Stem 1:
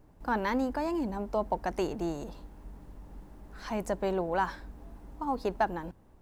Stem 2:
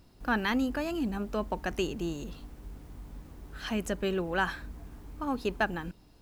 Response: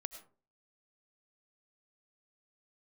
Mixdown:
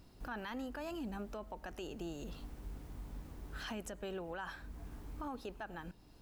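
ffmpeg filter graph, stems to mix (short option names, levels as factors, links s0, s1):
-filter_complex "[0:a]volume=0.126,asplit=2[s0][s1];[1:a]volume=-1,volume=0.794,asplit=2[s2][s3];[s3]volume=0.0944[s4];[s1]apad=whole_len=274277[s5];[s2][s5]sidechaincompress=threshold=0.00224:ratio=8:attack=16:release=473[s6];[2:a]atrim=start_sample=2205[s7];[s4][s7]afir=irnorm=-1:irlink=0[s8];[s0][s6][s8]amix=inputs=3:normalize=0,alimiter=level_in=3.16:limit=0.0631:level=0:latency=1:release=27,volume=0.316"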